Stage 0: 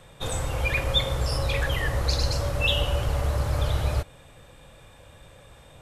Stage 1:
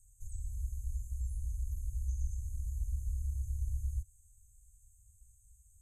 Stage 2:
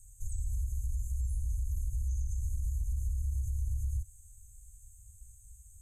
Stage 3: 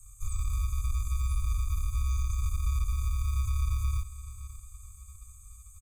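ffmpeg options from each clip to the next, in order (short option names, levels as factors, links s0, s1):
-filter_complex "[0:a]afftfilt=real='re*(1-between(b*sr/4096,110,6200))':imag='im*(1-between(b*sr/4096,110,6200))':win_size=4096:overlap=0.75,equalizer=f=100:t=o:w=0.67:g=-11,equalizer=f=400:t=o:w=0.67:g=3,equalizer=f=1000:t=o:w=0.67:g=9,equalizer=f=6300:t=o:w=0.67:g=5,acrossover=split=3000[s0][s1];[s1]acompressor=threshold=0.00251:ratio=4:attack=1:release=60[s2];[s0][s2]amix=inputs=2:normalize=0,volume=0.473"
-af "alimiter=level_in=3.55:limit=0.0631:level=0:latency=1:release=67,volume=0.282,volume=2.66"
-filter_complex "[0:a]acrossover=split=140|910[s0][s1][s2];[s0]acrusher=samples=37:mix=1:aa=0.000001[s3];[s3][s1][s2]amix=inputs=3:normalize=0,aecho=1:1:563|1126|1689|2252:0.178|0.0711|0.0285|0.0114,volume=1.58"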